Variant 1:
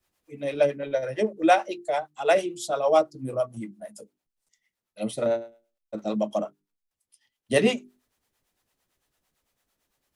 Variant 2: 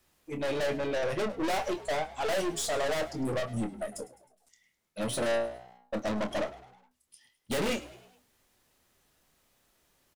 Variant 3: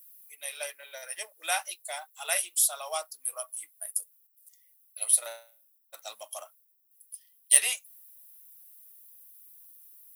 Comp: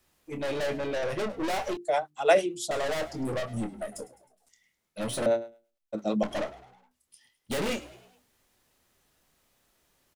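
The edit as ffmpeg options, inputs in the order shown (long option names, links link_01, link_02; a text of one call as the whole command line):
ffmpeg -i take0.wav -i take1.wav -filter_complex "[0:a]asplit=2[link_01][link_02];[1:a]asplit=3[link_03][link_04][link_05];[link_03]atrim=end=1.772[link_06];[link_01]atrim=start=1.768:end=2.712[link_07];[link_04]atrim=start=2.708:end=5.262[link_08];[link_02]atrim=start=5.258:end=6.232[link_09];[link_05]atrim=start=6.228[link_10];[link_06][link_07]acrossfade=duration=0.004:curve1=hsin:curve2=hsin[link_11];[link_11][link_08]acrossfade=duration=0.004:curve1=hsin:curve2=hsin[link_12];[link_12][link_09]acrossfade=duration=0.004:curve1=hsin:curve2=hsin[link_13];[link_13][link_10]acrossfade=duration=0.004:curve1=hsin:curve2=hsin" out.wav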